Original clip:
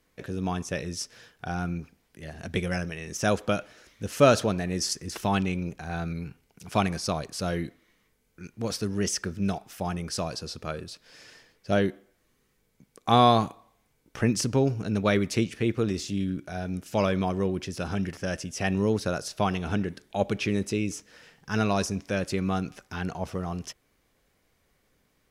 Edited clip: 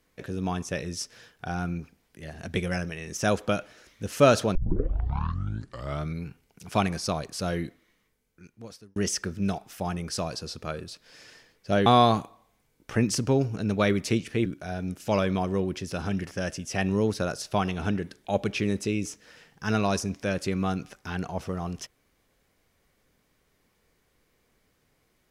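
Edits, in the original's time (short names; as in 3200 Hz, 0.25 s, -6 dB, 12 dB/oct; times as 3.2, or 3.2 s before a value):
4.55 tape start 1.62 s
7.66–8.96 fade out
11.86–13.12 cut
15.72–16.32 cut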